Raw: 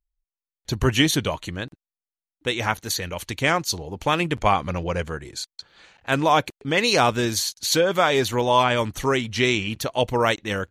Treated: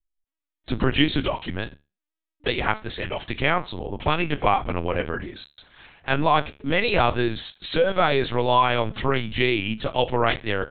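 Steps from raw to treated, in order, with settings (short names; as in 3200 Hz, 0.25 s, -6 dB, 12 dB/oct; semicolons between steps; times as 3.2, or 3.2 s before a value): resonator 72 Hz, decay 0.27 s, harmonics all, mix 60%; in parallel at 0 dB: compressor, threshold -31 dBFS, peak gain reduction 13.5 dB; on the sum: LPC vocoder at 8 kHz pitch kept; gain +1.5 dB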